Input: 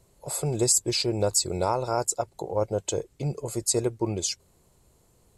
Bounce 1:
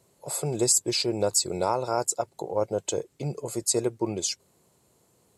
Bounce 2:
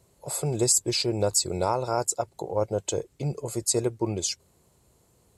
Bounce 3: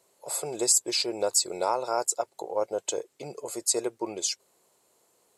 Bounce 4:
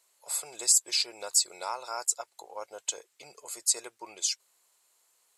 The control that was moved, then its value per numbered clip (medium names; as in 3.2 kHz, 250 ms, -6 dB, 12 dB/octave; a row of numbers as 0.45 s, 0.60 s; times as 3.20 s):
high-pass, cutoff frequency: 140 Hz, 56 Hz, 430 Hz, 1.3 kHz